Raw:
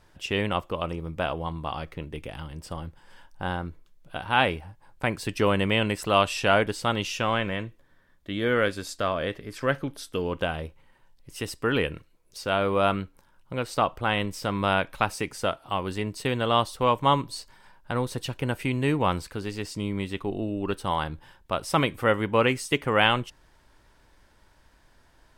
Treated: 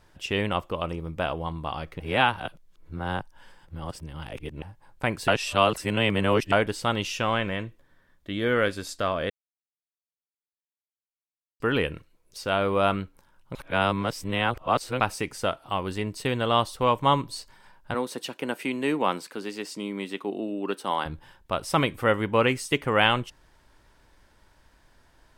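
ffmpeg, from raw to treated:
ffmpeg -i in.wav -filter_complex "[0:a]asettb=1/sr,asplit=3[link_01][link_02][link_03];[link_01]atrim=end=17.944[link_04];[link_02]atrim=start=17.94:end=21.06,asetpts=PTS-STARTPTS,afade=type=in:duration=0.004:curve=qsin,afade=type=out:start_time=3.116:duration=0.004:curve=qsin,highpass=frequency=210:width=0.5412,highpass=frequency=210:width=1.3066[link_05];[link_03]atrim=start=21.056[link_06];[link_04][link_05]acrossfade=duration=0.004:curve1=hsin:curve2=qsin[link_07];[link_07][link_06]acrossfade=duration=0.004:curve1=qsin:curve2=hsin,asplit=9[link_08][link_09][link_10][link_11][link_12][link_13][link_14][link_15][link_16];[link_08]atrim=end=2.002[link_17];[link_09]atrim=start=1.998:end=4.622,asetpts=PTS-STARTPTS,areverse[link_18];[link_10]atrim=start=4.618:end=5.282[link_19];[link_11]atrim=start=5.278:end=6.522,asetpts=PTS-STARTPTS,areverse[link_20];[link_12]atrim=start=6.518:end=9.3,asetpts=PTS-STARTPTS,afade=type=out:start_time=2.778:duration=0.004:curve=hsin[link_21];[link_13]atrim=start=9.3:end=11.6,asetpts=PTS-STARTPTS,volume=0[link_22];[link_14]atrim=start=11.6:end=13.552,asetpts=PTS-STARTPTS,afade=type=in:duration=0.004:curve=hsin[link_23];[link_15]atrim=start=13.548:end=15.002,asetpts=PTS-STARTPTS,areverse[link_24];[link_16]atrim=start=14.998[link_25];[link_17][link_18]acrossfade=duration=0.004:curve1=hsin:curve2=hsin[link_26];[link_26][link_19]acrossfade=duration=0.004:curve1=hsin:curve2=hsin[link_27];[link_27][link_20]acrossfade=duration=0.004:curve1=hsin:curve2=hsin[link_28];[link_21][link_22][link_23]concat=n=3:v=0:a=1[link_29];[link_28][link_29]acrossfade=duration=0.004:curve1=hsin:curve2=hsin[link_30];[link_30][link_24]acrossfade=duration=0.004:curve1=hsin:curve2=hsin[link_31];[link_31][link_25]acrossfade=duration=0.004:curve1=hsin:curve2=hsin" out.wav

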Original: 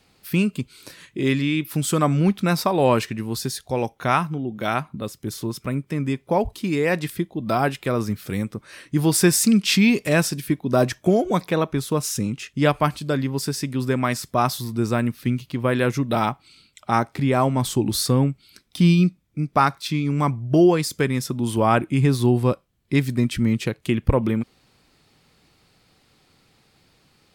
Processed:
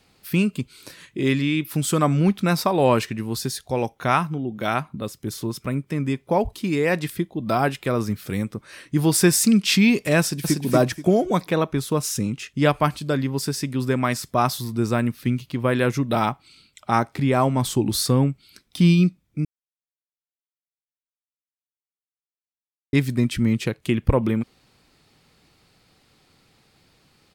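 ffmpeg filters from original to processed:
ffmpeg -i in.wav -filter_complex "[0:a]asplit=2[link_01][link_02];[link_02]afade=type=in:start_time=10.2:duration=0.01,afade=type=out:start_time=10.62:duration=0.01,aecho=0:1:240|480|720|960:0.794328|0.198582|0.0496455|0.0124114[link_03];[link_01][link_03]amix=inputs=2:normalize=0,asplit=3[link_04][link_05][link_06];[link_04]atrim=end=19.45,asetpts=PTS-STARTPTS,afade=type=out:start_time=19.446:duration=0.004:curve=hsin[link_07];[link_05]atrim=start=19.45:end=22.93,asetpts=PTS-STARTPTS,volume=0[link_08];[link_06]atrim=start=22.93,asetpts=PTS-STARTPTS,afade=type=in:duration=0.004:curve=hsin[link_09];[link_07][link_08][link_09]concat=n=3:v=0:a=1" out.wav

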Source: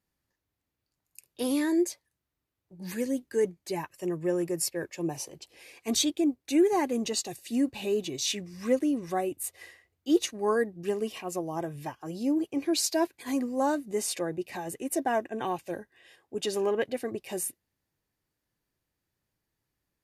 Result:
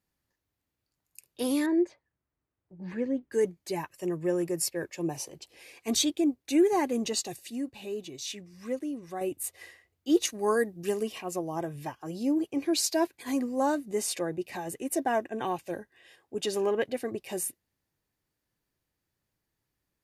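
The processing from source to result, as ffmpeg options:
ffmpeg -i in.wav -filter_complex "[0:a]asettb=1/sr,asplit=3[link_01][link_02][link_03];[link_01]atrim=end=1.664[link_04];[link_02]atrim=start=1.66:end=3.32,asetpts=PTS-STARTPTS,afade=type=in:duration=0.004:curve=qsin,afade=type=out:start_time=1.656:duration=0.004:curve=qsin,lowpass=1900[link_05];[link_03]atrim=start=3.316[link_06];[link_04][link_05]acrossfade=duration=0.004:curve1=hsin:curve2=qsin[link_07];[link_07][link_06]acrossfade=duration=0.004:curve1=qsin:curve2=hsin,asettb=1/sr,asplit=3[link_08][link_09][link_10];[link_08]atrim=end=10.254[link_11];[link_09]atrim=start=10.25:end=11.03,asetpts=PTS-STARTPTS,afade=type=in:duration=0.004:curve=qsin,afade=type=out:start_time=0.776:duration=0.004:curve=qsin,highshelf=frequency=4700:gain=10[link_12];[link_10]atrim=start=11.026[link_13];[link_11][link_12]acrossfade=duration=0.004:curve1=hsin:curve2=qsin[link_14];[link_14][link_13]acrossfade=duration=0.004:curve1=qsin:curve2=hsin,asplit=3[link_15][link_16][link_17];[link_15]atrim=end=7.502[link_18];[link_16]atrim=start=7.498:end=9.212,asetpts=PTS-STARTPTS,volume=-7.5dB[link_19];[link_17]atrim=start=9.208[link_20];[link_18][link_19]acrossfade=duration=0.004:curve1=hsin:curve2=hsin[link_21];[link_21][link_20]acrossfade=duration=0.004:curve1=hsin:curve2=hsin" out.wav

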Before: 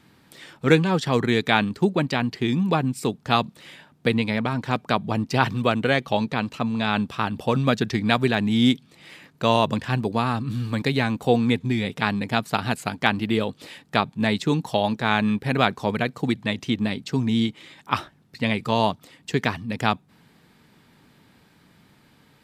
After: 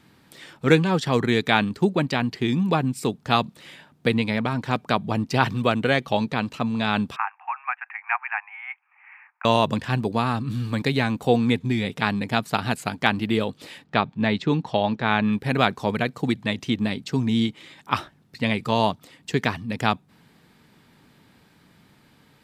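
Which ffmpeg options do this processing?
ffmpeg -i in.wav -filter_complex "[0:a]asettb=1/sr,asplit=3[link_01][link_02][link_03];[link_01]atrim=end=7.164[link_04];[link_02]atrim=start=7.16:end=9.45,asetpts=PTS-STARTPTS,afade=type=in:duration=0.004:curve=qsin,afade=type=out:start_time=2.286:duration=0.004:curve=qsin,asuperpass=centerf=1400:order=20:qfactor=0.78[link_05];[link_03]atrim=start=9.446[link_06];[link_04][link_05]acrossfade=duration=0.004:curve1=hsin:curve2=qsin[link_07];[link_07][link_06]acrossfade=duration=0.004:curve1=qsin:curve2=hsin,asettb=1/sr,asplit=3[link_08][link_09][link_10];[link_08]atrim=end=13.844[link_11];[link_09]atrim=start=13.84:end=15.33,asetpts=PTS-STARTPTS,afade=type=in:duration=0.004:curve=qsin,afade=type=out:start_time=1.486:duration=0.004:curve=qsin,lowpass=3800[link_12];[link_10]atrim=start=15.326[link_13];[link_11][link_12]acrossfade=duration=0.004:curve1=hsin:curve2=qsin[link_14];[link_14][link_13]acrossfade=duration=0.004:curve1=qsin:curve2=hsin" out.wav

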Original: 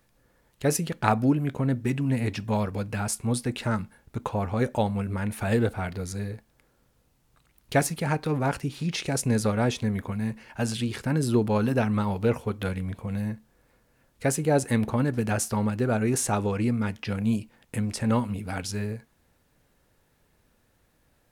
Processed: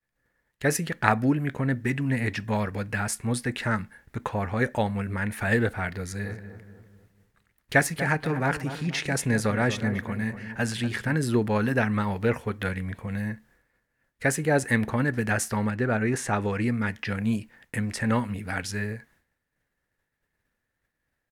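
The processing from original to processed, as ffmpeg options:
ffmpeg -i in.wav -filter_complex "[0:a]asplit=3[link_01][link_02][link_03];[link_01]afade=type=out:start_time=6.23:duration=0.02[link_04];[link_02]asplit=2[link_05][link_06];[link_06]adelay=241,lowpass=frequency=1400:poles=1,volume=-10.5dB,asplit=2[link_07][link_08];[link_08]adelay=241,lowpass=frequency=1400:poles=1,volume=0.48,asplit=2[link_09][link_10];[link_10]adelay=241,lowpass=frequency=1400:poles=1,volume=0.48,asplit=2[link_11][link_12];[link_12]adelay=241,lowpass=frequency=1400:poles=1,volume=0.48,asplit=2[link_13][link_14];[link_14]adelay=241,lowpass=frequency=1400:poles=1,volume=0.48[link_15];[link_05][link_07][link_09][link_11][link_13][link_15]amix=inputs=6:normalize=0,afade=type=in:start_time=6.23:duration=0.02,afade=type=out:start_time=11.14:duration=0.02[link_16];[link_03]afade=type=in:start_time=11.14:duration=0.02[link_17];[link_04][link_16][link_17]amix=inputs=3:normalize=0,asettb=1/sr,asplit=3[link_18][link_19][link_20];[link_18]atrim=end=15.714[link_21];[link_19]atrim=start=15.71:end=16.42,asetpts=PTS-STARTPTS,afade=type=in:duration=0.004:curve=qsin,afade=type=out:start_time=0.706:duration=0.004:curve=qsin,lowpass=frequency=4000:poles=1[link_22];[link_20]atrim=start=16.416[link_23];[link_21][link_22]acrossfade=duration=0.004:curve1=hsin:curve2=qsin[link_24];[link_24][link_23]acrossfade=duration=0.004:curve1=qsin:curve2=hsin,agate=range=-33dB:threshold=-55dB:ratio=3:detection=peak,equalizer=frequency=1800:width=2.4:gain=12,volume=-1dB" out.wav

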